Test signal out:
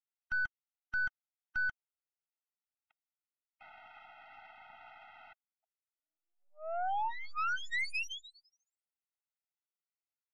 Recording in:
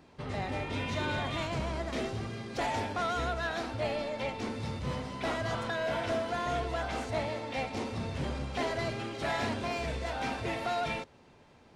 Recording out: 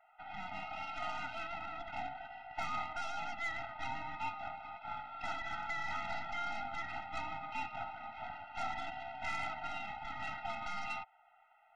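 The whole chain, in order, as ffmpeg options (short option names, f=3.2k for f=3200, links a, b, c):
-af "highpass=f=340:t=q:w=0.5412,highpass=f=340:t=q:w=1.307,lowpass=f=2.5k:t=q:w=0.5176,lowpass=f=2.5k:t=q:w=0.7071,lowpass=f=2.5k:t=q:w=1.932,afreqshift=350,aeval=exprs='0.0841*(cos(1*acos(clip(val(0)/0.0841,-1,1)))-cos(1*PI/2))+0.000596*(cos(2*acos(clip(val(0)/0.0841,-1,1)))-cos(2*PI/2))+0.0075*(cos(3*acos(clip(val(0)/0.0841,-1,1)))-cos(3*PI/2))+0.0075*(cos(6*acos(clip(val(0)/0.0841,-1,1)))-cos(6*PI/2))':c=same,afftfilt=real='re*eq(mod(floor(b*sr/1024/310),2),0)':imag='im*eq(mod(floor(b*sr/1024/310),2),0)':win_size=1024:overlap=0.75"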